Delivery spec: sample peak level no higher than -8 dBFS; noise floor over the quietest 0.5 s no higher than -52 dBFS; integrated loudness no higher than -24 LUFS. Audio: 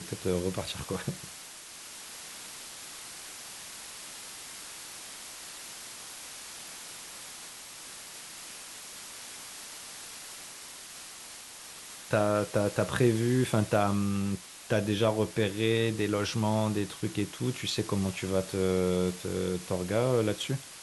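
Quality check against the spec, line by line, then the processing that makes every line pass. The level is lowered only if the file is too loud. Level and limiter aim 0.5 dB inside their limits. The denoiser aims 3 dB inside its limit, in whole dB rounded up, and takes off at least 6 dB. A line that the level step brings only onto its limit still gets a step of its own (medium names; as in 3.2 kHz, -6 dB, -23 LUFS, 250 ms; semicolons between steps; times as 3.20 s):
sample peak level -11.5 dBFS: pass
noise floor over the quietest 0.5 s -46 dBFS: fail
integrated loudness -32.0 LUFS: pass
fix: noise reduction 9 dB, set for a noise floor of -46 dBFS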